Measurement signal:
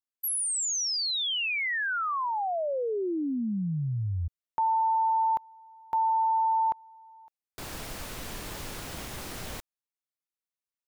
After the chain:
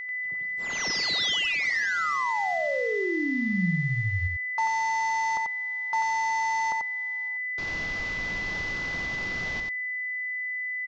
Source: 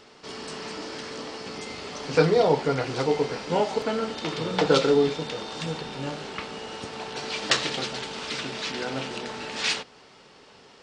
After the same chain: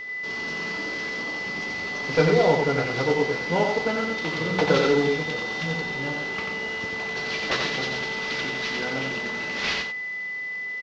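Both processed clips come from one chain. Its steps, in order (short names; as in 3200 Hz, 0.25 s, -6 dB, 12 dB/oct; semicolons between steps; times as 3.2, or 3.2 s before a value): CVSD 32 kbps; bell 180 Hz +5 dB 0.21 oct; whine 2000 Hz -33 dBFS; echo 90 ms -4.5 dB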